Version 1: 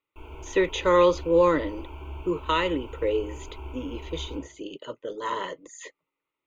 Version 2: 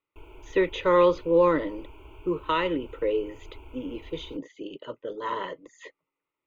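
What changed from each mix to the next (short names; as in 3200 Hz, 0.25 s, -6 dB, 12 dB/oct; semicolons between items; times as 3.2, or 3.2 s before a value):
speech: add air absorption 180 m; reverb: off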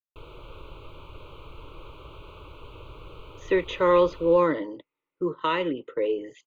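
speech: entry +2.95 s; background: remove fixed phaser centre 800 Hz, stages 8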